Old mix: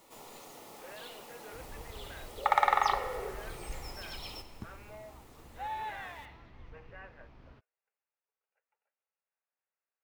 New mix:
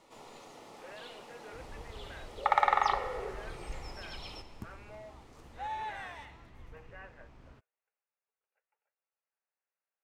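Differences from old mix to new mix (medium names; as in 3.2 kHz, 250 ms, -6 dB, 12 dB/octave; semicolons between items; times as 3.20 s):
first sound: remove low-pass 5.4 kHz 24 dB/octave; second sound: add distance through air 65 m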